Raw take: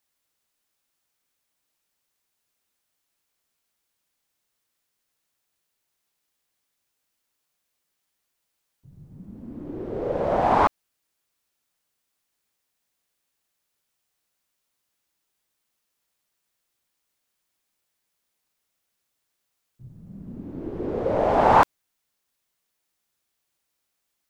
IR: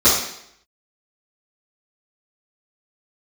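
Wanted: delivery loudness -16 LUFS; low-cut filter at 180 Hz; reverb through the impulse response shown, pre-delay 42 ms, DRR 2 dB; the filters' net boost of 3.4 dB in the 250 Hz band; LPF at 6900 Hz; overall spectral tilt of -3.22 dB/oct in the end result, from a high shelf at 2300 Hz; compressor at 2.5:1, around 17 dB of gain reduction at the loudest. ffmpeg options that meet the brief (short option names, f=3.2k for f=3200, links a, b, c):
-filter_complex "[0:a]highpass=180,lowpass=6.9k,equalizer=f=250:t=o:g=5.5,highshelf=f=2.3k:g=8,acompressor=threshold=-37dB:ratio=2.5,asplit=2[a][b];[1:a]atrim=start_sample=2205,adelay=42[c];[b][c]afir=irnorm=-1:irlink=0,volume=-24dB[d];[a][d]amix=inputs=2:normalize=0,volume=17dB"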